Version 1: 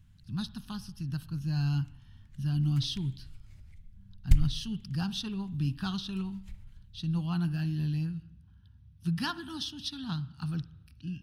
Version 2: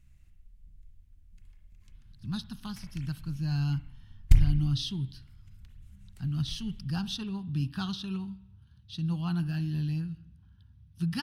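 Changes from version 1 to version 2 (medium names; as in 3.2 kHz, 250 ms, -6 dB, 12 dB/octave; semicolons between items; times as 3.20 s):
speech: entry +1.95 s; background: send +11.5 dB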